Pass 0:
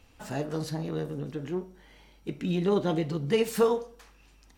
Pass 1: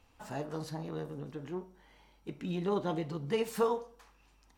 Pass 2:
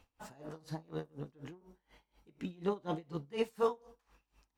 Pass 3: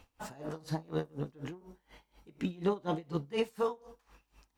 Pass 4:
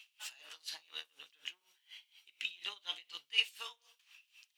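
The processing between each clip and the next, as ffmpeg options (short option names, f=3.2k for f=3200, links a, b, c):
-af "equalizer=f=960:w=1.5:g=6.5,volume=-7.5dB"
-af "aeval=exprs='val(0)*pow(10,-25*(0.5-0.5*cos(2*PI*4.1*n/s))/20)':c=same,volume=1dB"
-af "alimiter=level_in=3dB:limit=-24dB:level=0:latency=1:release=286,volume=-3dB,volume=6.5dB"
-af "highpass=f=2.9k:t=q:w=3.5,volume=2.5dB"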